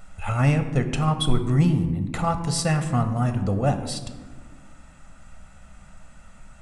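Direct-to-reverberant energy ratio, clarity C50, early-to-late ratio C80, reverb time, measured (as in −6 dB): 7.5 dB, 10.0 dB, 11.5 dB, 1.4 s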